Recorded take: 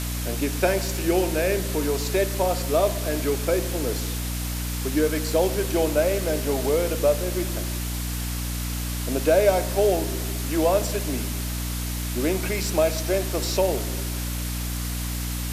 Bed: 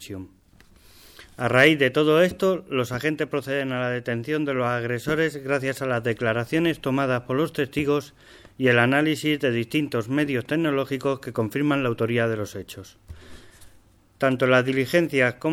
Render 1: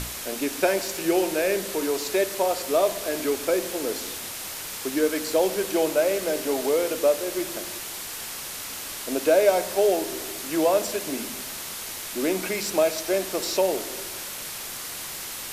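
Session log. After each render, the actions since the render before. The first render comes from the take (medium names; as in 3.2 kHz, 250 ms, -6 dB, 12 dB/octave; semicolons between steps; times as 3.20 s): hum notches 60/120/180/240/300 Hz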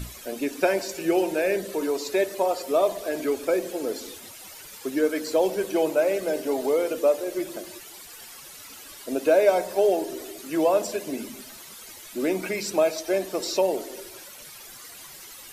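noise reduction 13 dB, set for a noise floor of -35 dBFS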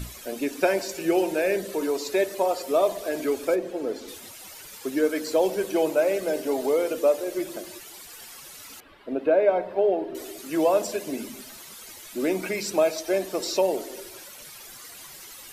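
3.54–4.07 s: low-pass 1.4 kHz -> 2.8 kHz 6 dB/octave; 8.80–10.15 s: distance through air 460 m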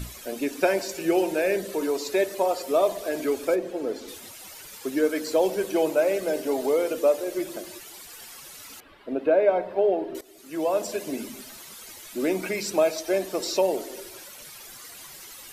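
10.21–11.02 s: fade in, from -18 dB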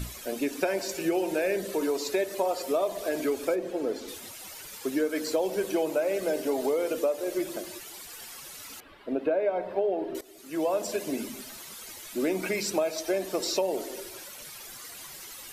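compression, threshold -23 dBFS, peak gain reduction 8.5 dB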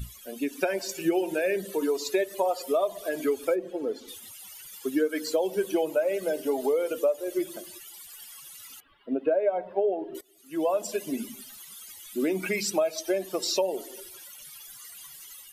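expander on every frequency bin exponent 1.5; level rider gain up to 4 dB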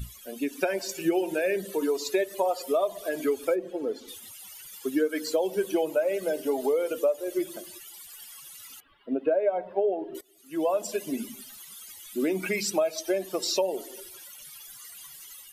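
no audible change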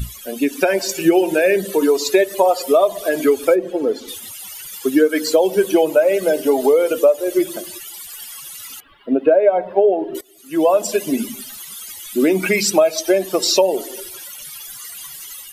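trim +11.5 dB; peak limiter -1 dBFS, peak gain reduction 1.5 dB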